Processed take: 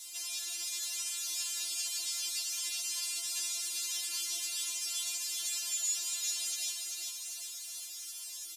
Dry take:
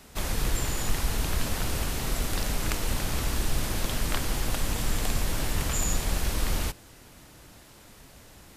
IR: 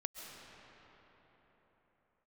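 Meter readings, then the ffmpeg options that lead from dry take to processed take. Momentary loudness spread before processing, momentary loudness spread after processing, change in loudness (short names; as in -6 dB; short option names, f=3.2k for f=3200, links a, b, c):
2 LU, 8 LU, -4.0 dB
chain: -filter_complex "[0:a]highpass=240,aexciter=amount=1.8:drive=9.7:freq=2.4k,lowpass=9.8k,aderivative,asplit=2[a][b];[b]acompressor=threshold=-35dB:ratio=6,volume=-2dB[c];[a][c]amix=inputs=2:normalize=0,alimiter=limit=-19.5dB:level=0:latency=1:release=37,acrossover=split=6900[d][e];[e]acompressor=threshold=-43dB:ratio=4:attack=1:release=60[f];[d][f]amix=inputs=2:normalize=0,acrusher=bits=8:mix=0:aa=0.5,asplit=2[g][h];[h]aecho=0:1:393|786|1179|1572|1965|2358|2751|3144:0.631|0.353|0.198|0.111|0.0621|0.0347|0.0195|0.0109[i];[g][i]amix=inputs=2:normalize=0,afftfilt=real='re*4*eq(mod(b,16),0)':imag='im*4*eq(mod(b,16),0)':win_size=2048:overlap=0.75,volume=-1.5dB"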